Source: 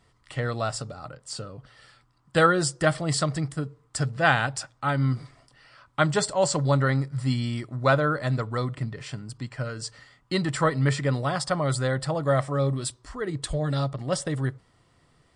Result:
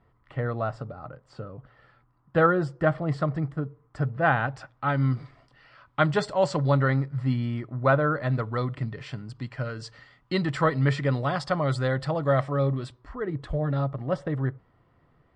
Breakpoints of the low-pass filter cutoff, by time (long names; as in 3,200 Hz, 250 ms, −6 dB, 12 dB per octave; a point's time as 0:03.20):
0:04.30 1,500 Hz
0:05.04 3,300 Hz
0:06.75 3,300 Hz
0:07.41 1,900 Hz
0:07.91 1,900 Hz
0:08.74 3,800 Hz
0:12.37 3,800 Hz
0:13.22 1,700 Hz